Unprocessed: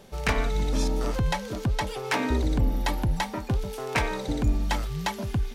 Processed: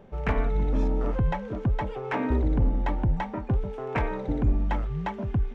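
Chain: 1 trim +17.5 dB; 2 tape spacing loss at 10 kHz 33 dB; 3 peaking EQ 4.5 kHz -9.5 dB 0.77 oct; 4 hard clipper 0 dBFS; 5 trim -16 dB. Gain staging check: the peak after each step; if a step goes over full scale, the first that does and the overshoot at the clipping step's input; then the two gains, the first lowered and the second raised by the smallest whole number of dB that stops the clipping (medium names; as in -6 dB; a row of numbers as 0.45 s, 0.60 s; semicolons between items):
+5.0 dBFS, +4.0 dBFS, +4.0 dBFS, 0.0 dBFS, -16.0 dBFS; step 1, 4.0 dB; step 1 +13.5 dB, step 5 -12 dB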